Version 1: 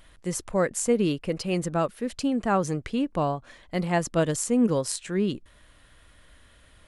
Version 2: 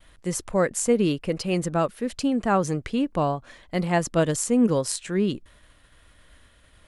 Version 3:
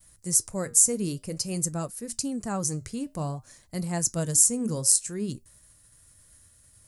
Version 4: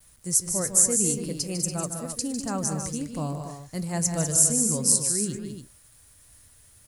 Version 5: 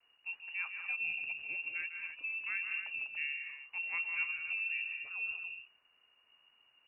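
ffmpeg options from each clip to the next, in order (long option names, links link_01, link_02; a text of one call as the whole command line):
ffmpeg -i in.wav -af "agate=range=-33dB:threshold=-51dB:ratio=3:detection=peak,volume=2dB" out.wav
ffmpeg -i in.wav -af "equalizer=frequency=110:width_type=o:width=1.5:gain=13,flanger=delay=4.8:depth=6.1:regen=-78:speed=0.53:shape=triangular,aexciter=amount=12.1:drive=4.2:freq=4900,volume=-7.5dB" out.wav
ffmpeg -i in.wav -filter_complex "[0:a]acrusher=bits=9:mix=0:aa=0.000001,asplit=2[link_01][link_02];[link_02]aecho=0:1:151.6|198.3|285.7:0.355|0.398|0.355[link_03];[link_01][link_03]amix=inputs=2:normalize=0" out.wav
ffmpeg -i in.wav -af "lowpass=frequency=2500:width_type=q:width=0.5098,lowpass=frequency=2500:width_type=q:width=0.6013,lowpass=frequency=2500:width_type=q:width=0.9,lowpass=frequency=2500:width_type=q:width=2.563,afreqshift=-2900,volume=-8.5dB" out.wav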